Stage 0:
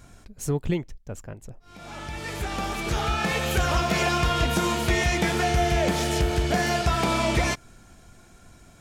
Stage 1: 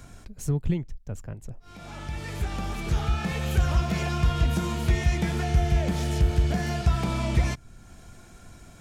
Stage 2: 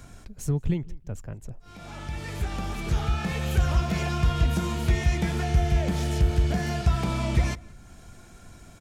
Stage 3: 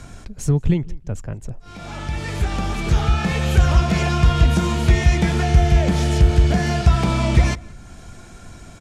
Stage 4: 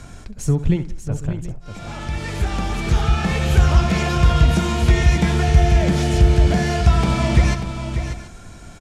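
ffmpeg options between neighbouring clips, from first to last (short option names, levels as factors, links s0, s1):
-filter_complex "[0:a]acrossover=split=190[s0][s1];[s1]acompressor=threshold=0.00126:ratio=1.5[s2];[s0][s2]amix=inputs=2:normalize=0,volume=1.58"
-filter_complex "[0:a]asplit=2[s0][s1];[s1]adelay=175,lowpass=f=3000:p=1,volume=0.0794,asplit=2[s2][s3];[s3]adelay=175,lowpass=f=3000:p=1,volume=0.31[s4];[s0][s2][s4]amix=inputs=3:normalize=0"
-af "lowpass=9700,volume=2.51"
-af "aecho=1:1:66|590|729:0.211|0.335|0.141"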